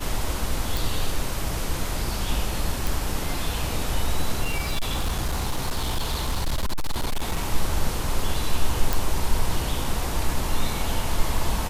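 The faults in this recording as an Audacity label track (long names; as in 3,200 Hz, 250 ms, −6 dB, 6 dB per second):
0.770000	0.770000	click
2.870000	2.870000	click
4.440000	7.460000	clipping −20 dBFS
8.930000	8.930000	click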